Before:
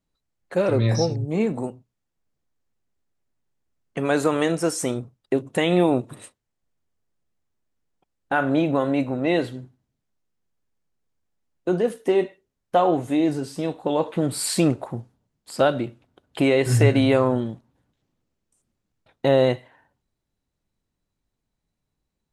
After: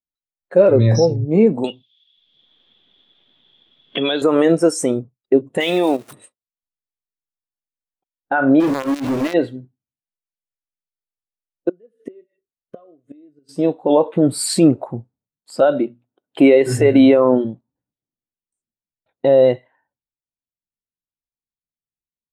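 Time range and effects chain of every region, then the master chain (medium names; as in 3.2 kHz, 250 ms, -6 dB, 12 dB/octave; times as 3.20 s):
1.64–4.22 s: resonant low-pass 3.4 kHz, resonance Q 14 + three bands compressed up and down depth 100%
5.60–6.13 s: jump at every zero crossing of -30 dBFS + tilt EQ +3 dB/octave + level held to a coarse grid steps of 12 dB
8.60–9.34 s: bass shelf 80 Hz -4.5 dB + hum notches 50/100/150/200/250/300/350/400/450/500 Hz + companded quantiser 2-bit
11.69–13.49 s: treble shelf 10 kHz -7 dB + inverted gate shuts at -17 dBFS, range -27 dB + Butterworth band-stop 840 Hz, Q 2.5
15.62–17.45 s: high-pass 140 Hz + hum notches 60/120/180/240 Hz
whole clip: bass shelf 170 Hz -8 dB; loudness maximiser +14 dB; spectral contrast expander 1.5:1; trim -1 dB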